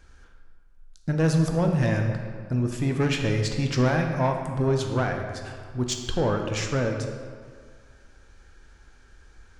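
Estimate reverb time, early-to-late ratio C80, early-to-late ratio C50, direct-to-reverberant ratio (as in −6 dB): 2.0 s, 6.0 dB, 5.0 dB, 3.0 dB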